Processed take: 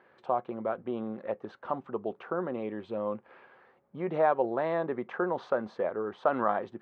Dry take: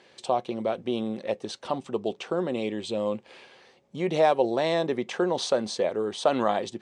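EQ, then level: resonant low-pass 1.4 kHz, resonance Q 2.5; -6.0 dB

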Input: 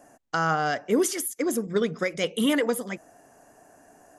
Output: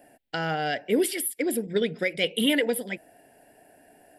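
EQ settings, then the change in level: bass shelf 420 Hz -8.5 dB; static phaser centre 2.8 kHz, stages 4; +5.5 dB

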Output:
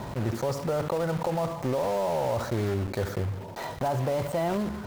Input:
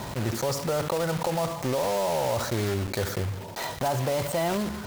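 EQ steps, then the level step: treble shelf 2.1 kHz -10 dB; 0.0 dB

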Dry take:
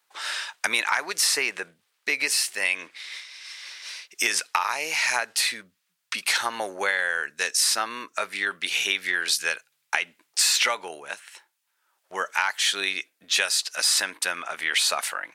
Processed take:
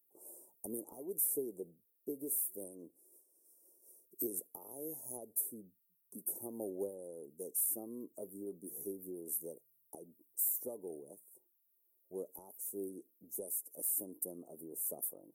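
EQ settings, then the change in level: inverse Chebyshev band-stop 1.5–4.2 kHz, stop band 80 dB; bass shelf 390 Hz -10.5 dB; +6.0 dB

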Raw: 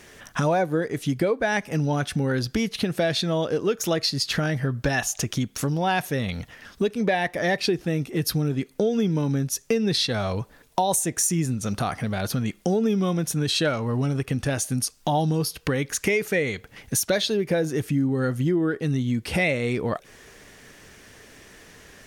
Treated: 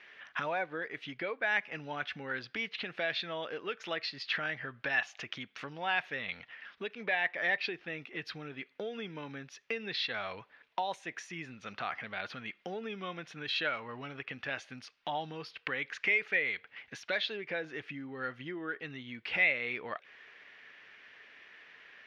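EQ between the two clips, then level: band-pass filter 2.4 kHz, Q 1.4; distance through air 270 m; +2.0 dB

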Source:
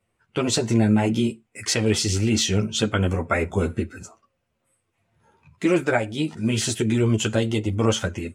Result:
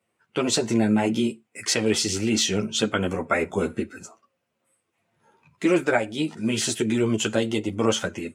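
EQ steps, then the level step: high-pass 180 Hz 12 dB/octave; 0.0 dB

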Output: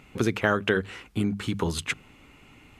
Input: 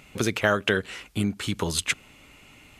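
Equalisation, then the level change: peaking EQ 600 Hz -6 dB 0.34 oct; treble shelf 2.3 kHz -10.5 dB; hum notches 50/100/150/200 Hz; +2.0 dB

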